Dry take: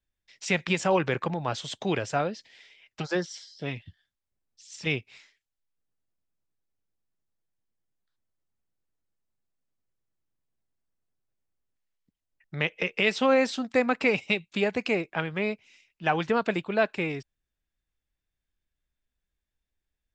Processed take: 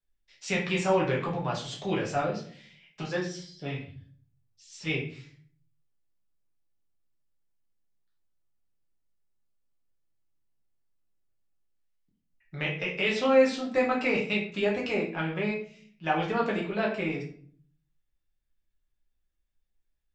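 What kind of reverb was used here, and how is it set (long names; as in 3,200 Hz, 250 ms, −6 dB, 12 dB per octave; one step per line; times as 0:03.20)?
rectangular room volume 55 cubic metres, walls mixed, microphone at 1 metre
level −7 dB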